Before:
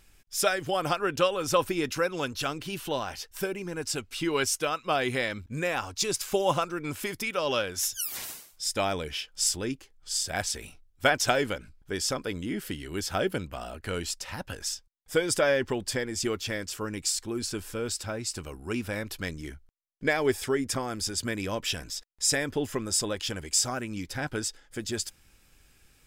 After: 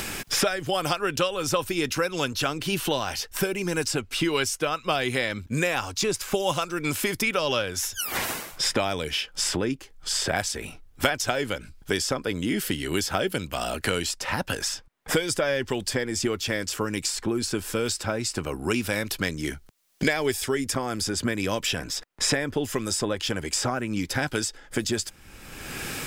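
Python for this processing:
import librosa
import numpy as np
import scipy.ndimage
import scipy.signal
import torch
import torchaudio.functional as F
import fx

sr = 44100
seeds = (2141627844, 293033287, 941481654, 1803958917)

y = fx.band_squash(x, sr, depth_pct=100)
y = y * 10.0 ** (2.5 / 20.0)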